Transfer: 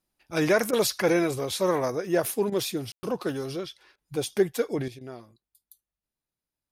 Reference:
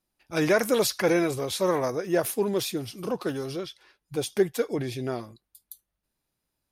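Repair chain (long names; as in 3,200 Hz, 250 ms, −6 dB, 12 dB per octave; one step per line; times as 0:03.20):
ambience match 0:02.92–0:03.03
repair the gap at 0:00.71/0:02.50/0:03.96/0:04.99, 19 ms
level correction +10 dB, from 0:04.88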